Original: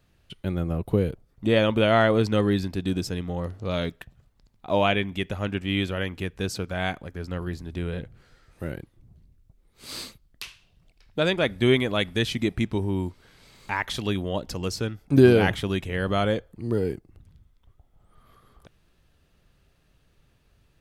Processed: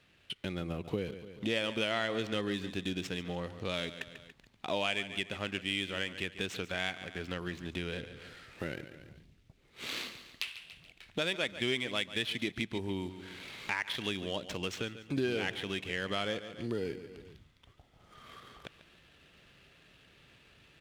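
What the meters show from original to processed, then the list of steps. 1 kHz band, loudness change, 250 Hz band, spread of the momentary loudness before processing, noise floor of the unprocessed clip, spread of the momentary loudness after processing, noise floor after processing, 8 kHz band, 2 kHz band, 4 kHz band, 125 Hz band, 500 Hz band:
-11.5 dB, -10.5 dB, -12.5 dB, 16 LU, -64 dBFS, 15 LU, -66 dBFS, -6.0 dB, -5.5 dB, -3.5 dB, -15.0 dB, -12.5 dB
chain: median filter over 9 samples; on a send: feedback delay 142 ms, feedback 36%, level -15.5 dB; on the sum: level rider gain up to 5 dB; frequency weighting D; compression 2.5:1, threshold -39 dBFS, peak gain reduction 20 dB

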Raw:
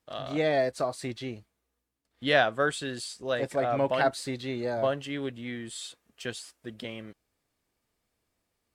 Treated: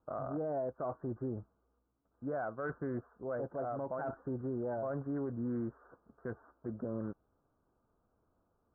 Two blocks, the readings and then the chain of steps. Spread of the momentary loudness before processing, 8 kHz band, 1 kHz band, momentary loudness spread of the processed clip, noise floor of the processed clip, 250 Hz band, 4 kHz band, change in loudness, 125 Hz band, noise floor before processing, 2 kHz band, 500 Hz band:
15 LU, under -35 dB, -11.0 dB, 9 LU, -78 dBFS, -4.0 dB, under -40 dB, -9.5 dB, -4.0 dB, -81 dBFS, -18.5 dB, -9.5 dB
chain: steep low-pass 1.5 kHz 96 dB/octave; reverse; compression 10:1, threshold -35 dBFS, peak gain reduction 16 dB; reverse; peak limiter -34.5 dBFS, peak gain reduction 9 dB; loudspeaker Doppler distortion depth 0.12 ms; trim +5 dB

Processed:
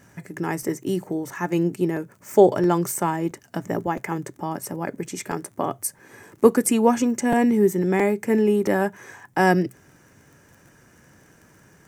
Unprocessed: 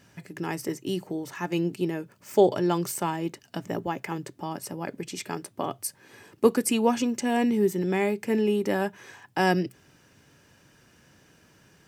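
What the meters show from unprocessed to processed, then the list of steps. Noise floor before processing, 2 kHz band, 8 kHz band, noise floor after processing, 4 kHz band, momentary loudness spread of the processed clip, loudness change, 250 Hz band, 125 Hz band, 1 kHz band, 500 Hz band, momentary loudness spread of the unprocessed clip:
-60 dBFS, +4.5 dB, +5.0 dB, -55 dBFS, -2.5 dB, 13 LU, +5.0 dB, +5.0 dB, +5.0 dB, +5.0 dB, +5.0 dB, 13 LU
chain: crackle 27 per s -43 dBFS; high-order bell 3.6 kHz -8.5 dB 1.2 oct; crackling interface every 0.67 s, samples 256, repeat, from 0.62 s; trim +5 dB

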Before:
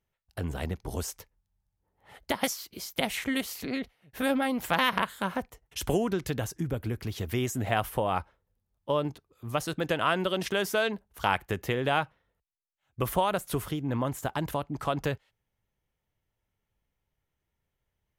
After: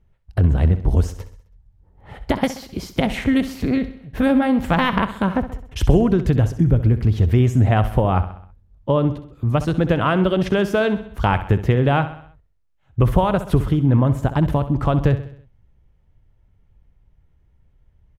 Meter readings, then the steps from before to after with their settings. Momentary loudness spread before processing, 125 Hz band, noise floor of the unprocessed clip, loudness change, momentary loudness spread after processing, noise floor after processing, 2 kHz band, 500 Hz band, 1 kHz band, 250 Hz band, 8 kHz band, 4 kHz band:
9 LU, +18.0 dB, -83 dBFS, +11.0 dB, 9 LU, -59 dBFS, +4.5 dB, +9.0 dB, +6.5 dB, +13.5 dB, no reading, +1.5 dB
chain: RIAA curve playback; in parallel at +2 dB: compression, threshold -32 dBFS, peak gain reduction 16.5 dB; on the sum: feedback delay 65 ms, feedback 51%, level -13 dB; trim +3.5 dB

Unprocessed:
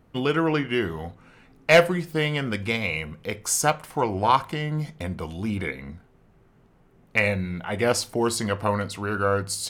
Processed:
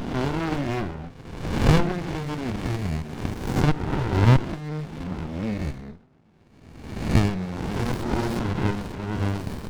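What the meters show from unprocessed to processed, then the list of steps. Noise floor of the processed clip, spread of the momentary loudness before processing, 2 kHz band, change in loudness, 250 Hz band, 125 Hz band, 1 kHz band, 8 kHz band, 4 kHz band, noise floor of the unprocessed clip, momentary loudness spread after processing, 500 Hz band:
-55 dBFS, 11 LU, -8.0 dB, -1.0 dB, +2.5 dB, +6.5 dB, -5.0 dB, -13.5 dB, -6.0 dB, -58 dBFS, 13 LU, -6.0 dB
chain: reverse spectral sustain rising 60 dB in 1.10 s; cabinet simulation 200–5500 Hz, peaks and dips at 470 Hz -8 dB, 1.6 kHz -9 dB, 2.9 kHz -7 dB; sliding maximum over 65 samples; trim +4 dB

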